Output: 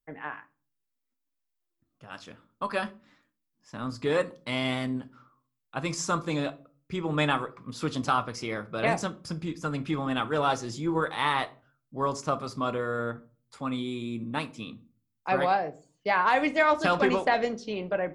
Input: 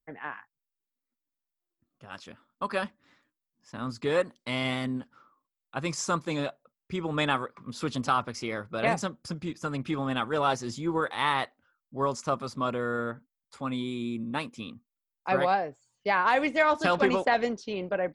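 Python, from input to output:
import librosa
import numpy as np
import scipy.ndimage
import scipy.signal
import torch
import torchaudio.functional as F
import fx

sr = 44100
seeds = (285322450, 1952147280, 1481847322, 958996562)

y = fx.room_shoebox(x, sr, seeds[0], volume_m3=220.0, walls='furnished', distance_m=0.49)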